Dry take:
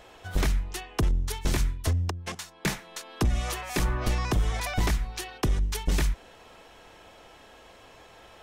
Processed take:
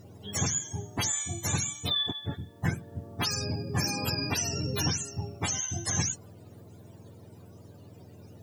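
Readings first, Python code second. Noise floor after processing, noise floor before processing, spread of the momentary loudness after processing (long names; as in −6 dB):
−52 dBFS, −52 dBFS, 8 LU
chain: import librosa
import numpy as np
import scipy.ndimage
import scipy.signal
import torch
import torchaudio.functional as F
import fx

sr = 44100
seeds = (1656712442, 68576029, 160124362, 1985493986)

y = fx.octave_mirror(x, sr, pivot_hz=550.0)
y = fx.quant_dither(y, sr, seeds[0], bits=12, dither='triangular')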